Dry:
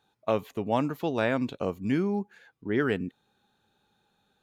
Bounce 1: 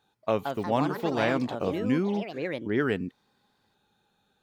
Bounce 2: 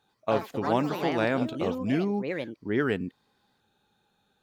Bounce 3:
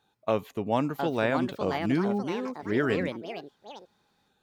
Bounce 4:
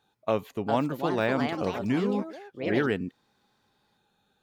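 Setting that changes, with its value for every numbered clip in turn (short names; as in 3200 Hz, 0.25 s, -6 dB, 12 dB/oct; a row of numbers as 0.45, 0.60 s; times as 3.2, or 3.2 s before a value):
echoes that change speed, time: 231, 90, 770, 461 ms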